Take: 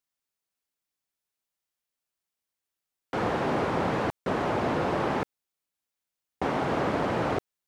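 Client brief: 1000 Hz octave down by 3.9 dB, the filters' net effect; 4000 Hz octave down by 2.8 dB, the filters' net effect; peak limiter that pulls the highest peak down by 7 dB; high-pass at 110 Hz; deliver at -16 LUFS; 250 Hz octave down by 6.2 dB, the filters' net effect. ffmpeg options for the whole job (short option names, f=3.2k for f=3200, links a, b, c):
-af "highpass=110,equalizer=f=250:t=o:g=-8,equalizer=f=1k:t=o:g=-4.5,equalizer=f=4k:t=o:g=-3.5,volume=19.5dB,alimiter=limit=-6dB:level=0:latency=1"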